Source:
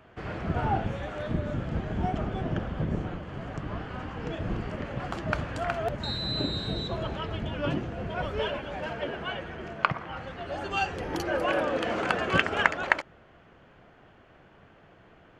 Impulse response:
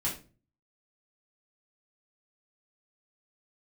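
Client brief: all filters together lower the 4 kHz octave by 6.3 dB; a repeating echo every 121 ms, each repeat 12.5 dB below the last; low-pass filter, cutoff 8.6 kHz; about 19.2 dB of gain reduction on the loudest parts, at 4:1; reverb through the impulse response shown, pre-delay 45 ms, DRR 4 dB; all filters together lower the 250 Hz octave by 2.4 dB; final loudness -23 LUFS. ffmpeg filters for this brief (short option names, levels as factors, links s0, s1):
-filter_complex "[0:a]lowpass=8600,equalizer=f=250:t=o:g=-3.5,equalizer=f=4000:t=o:g=-8,acompressor=threshold=0.00708:ratio=4,aecho=1:1:121|242|363:0.237|0.0569|0.0137,asplit=2[s0][s1];[1:a]atrim=start_sample=2205,adelay=45[s2];[s1][s2]afir=irnorm=-1:irlink=0,volume=0.355[s3];[s0][s3]amix=inputs=2:normalize=0,volume=9.44"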